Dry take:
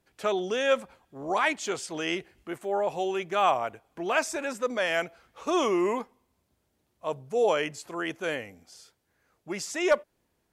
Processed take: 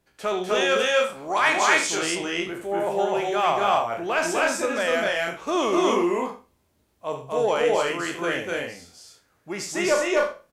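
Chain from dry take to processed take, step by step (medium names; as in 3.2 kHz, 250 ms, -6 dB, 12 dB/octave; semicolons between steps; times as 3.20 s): spectral sustain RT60 0.32 s; in parallel at -3 dB: saturation -19 dBFS, distortion -15 dB; 0.55–1.87 s: on the sum: tilt shelf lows -5 dB, about 650 Hz; loudspeakers at several distances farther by 26 m -9 dB, 86 m -1 dB, 98 m -3 dB; trim -3.5 dB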